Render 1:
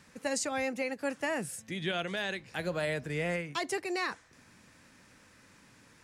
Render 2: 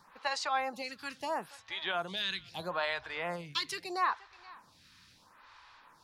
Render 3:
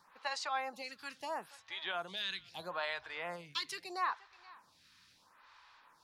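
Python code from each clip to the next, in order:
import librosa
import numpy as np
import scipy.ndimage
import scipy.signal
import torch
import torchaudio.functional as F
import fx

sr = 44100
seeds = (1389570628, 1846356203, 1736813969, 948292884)

y1 = fx.graphic_eq(x, sr, hz=(125, 250, 500, 1000, 2000, 4000, 8000), db=(-4, -10, -9, 11, -5, 10, -11))
y1 = y1 + 10.0 ** (-23.5 / 20.0) * np.pad(y1, (int(477 * sr / 1000.0), 0))[:len(y1)]
y1 = fx.stagger_phaser(y1, sr, hz=0.76)
y1 = y1 * librosa.db_to_amplitude(3.0)
y2 = fx.low_shelf(y1, sr, hz=320.0, db=-7.0)
y2 = y2 * librosa.db_to_amplitude(-4.0)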